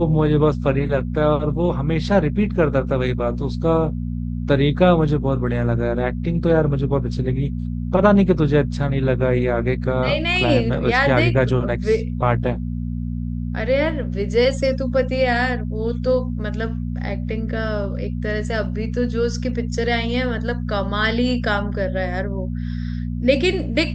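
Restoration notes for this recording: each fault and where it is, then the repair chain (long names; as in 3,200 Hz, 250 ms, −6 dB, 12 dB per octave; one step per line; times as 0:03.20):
mains hum 60 Hz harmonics 4 −25 dBFS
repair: hum removal 60 Hz, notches 4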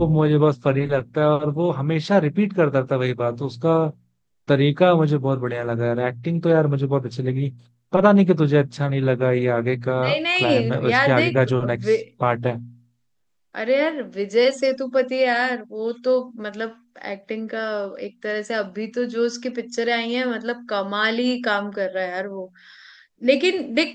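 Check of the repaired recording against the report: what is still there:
none of them is left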